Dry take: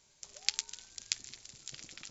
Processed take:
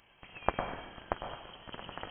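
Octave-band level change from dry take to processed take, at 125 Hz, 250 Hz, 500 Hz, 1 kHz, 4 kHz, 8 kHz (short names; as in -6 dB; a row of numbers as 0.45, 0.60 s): +15.0 dB, +18.0 dB, +25.0 dB, +23.5 dB, -9.5 dB, n/a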